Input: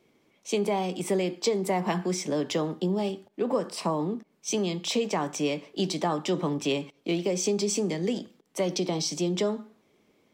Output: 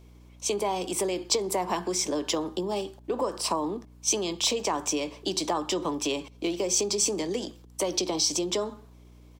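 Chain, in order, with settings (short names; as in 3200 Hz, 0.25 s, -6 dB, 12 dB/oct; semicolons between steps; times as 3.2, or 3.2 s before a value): HPF 50 Hz 24 dB/oct; tempo 1.1×; thirty-one-band EQ 315 Hz +6 dB, 1000 Hz +6 dB, 2000 Hz -4 dB; compressor 2.5:1, threshold -27 dBFS, peak gain reduction 5.5 dB; tone controls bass -13 dB, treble +6 dB; hum 60 Hz, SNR 22 dB; gain +3 dB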